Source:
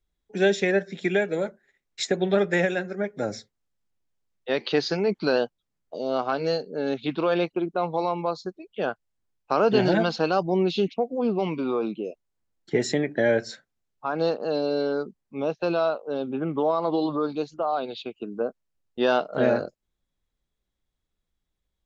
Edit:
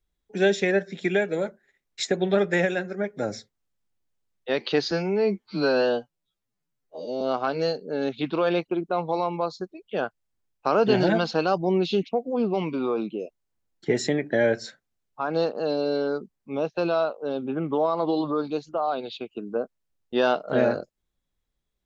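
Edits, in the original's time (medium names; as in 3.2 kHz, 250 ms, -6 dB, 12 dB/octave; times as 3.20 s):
4.91–6.06 s: stretch 2×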